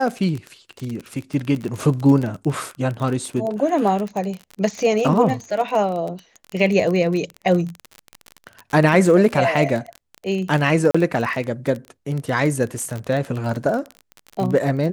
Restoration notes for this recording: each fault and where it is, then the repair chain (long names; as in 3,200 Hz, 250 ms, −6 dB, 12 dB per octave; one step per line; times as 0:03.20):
surface crackle 33 per second −24 dBFS
0:10.91–0:10.95: drop-out 35 ms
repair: click removal
repair the gap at 0:10.91, 35 ms